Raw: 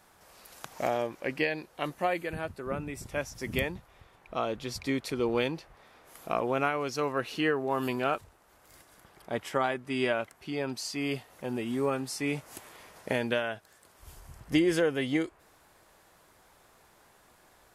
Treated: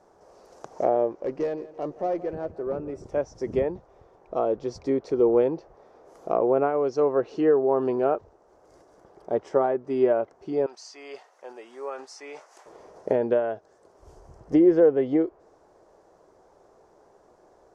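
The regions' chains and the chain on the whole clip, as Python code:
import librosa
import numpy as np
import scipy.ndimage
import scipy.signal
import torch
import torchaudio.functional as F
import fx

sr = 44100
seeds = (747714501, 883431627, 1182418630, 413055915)

y = fx.chain(x, sr, fx.high_shelf(hz=5400.0, db=-8.0),
    fx.tube_stage(drive_db=29.0, bias=0.35),
    fx.echo_feedback(ms=170, feedback_pct=49, wet_db=-17), at=(1.13, 3.04))
y = fx.chain(y, sr, fx.highpass(hz=1100.0, slope=12),
    fx.peak_eq(hz=2000.0, db=3.0, octaves=0.98),
    fx.sustainer(db_per_s=130.0), at=(10.66, 12.66))
y = fx.env_lowpass_down(y, sr, base_hz=2500.0, full_db=-24.5)
y = fx.curve_eq(y, sr, hz=(120.0, 250.0, 400.0, 700.0, 2400.0, 3700.0, 5900.0, 14000.0), db=(0, 3, 13, 8, -12, -12, -2, -26))
y = y * librosa.db_to_amplitude(-1.5)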